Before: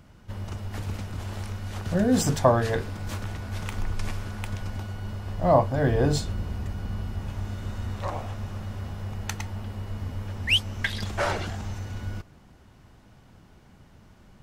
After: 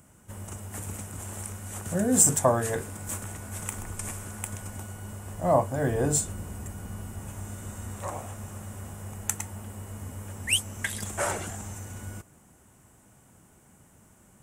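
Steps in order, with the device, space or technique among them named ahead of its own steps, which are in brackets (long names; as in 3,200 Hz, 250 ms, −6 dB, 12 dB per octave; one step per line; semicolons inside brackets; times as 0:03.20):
budget condenser microphone (high-pass filter 110 Hz 6 dB per octave; high shelf with overshoot 6,100 Hz +11.5 dB, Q 3)
level −2.5 dB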